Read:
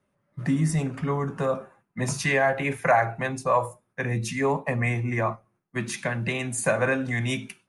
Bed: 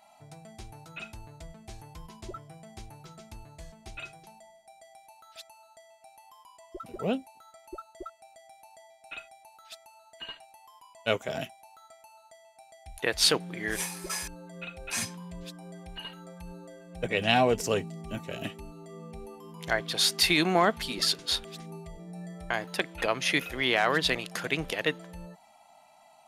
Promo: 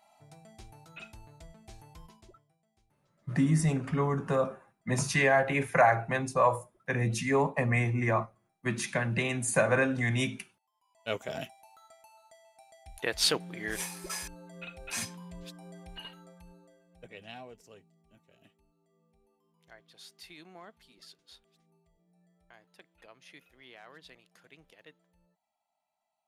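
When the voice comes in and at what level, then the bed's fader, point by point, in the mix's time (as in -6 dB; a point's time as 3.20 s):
2.90 s, -2.0 dB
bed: 2.05 s -5.5 dB
2.58 s -27.5 dB
10.71 s -27.5 dB
11.17 s -3.5 dB
15.99 s -3.5 dB
17.64 s -27 dB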